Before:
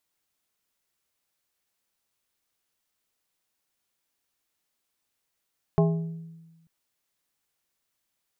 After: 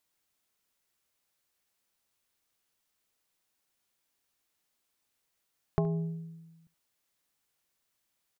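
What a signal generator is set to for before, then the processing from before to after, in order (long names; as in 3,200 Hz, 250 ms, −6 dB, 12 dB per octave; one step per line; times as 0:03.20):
struck glass plate, lowest mode 164 Hz, modes 5, decay 1.25 s, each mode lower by 4 dB, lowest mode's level −17 dB
downward compressor, threshold −25 dBFS
single-tap delay 71 ms −20 dB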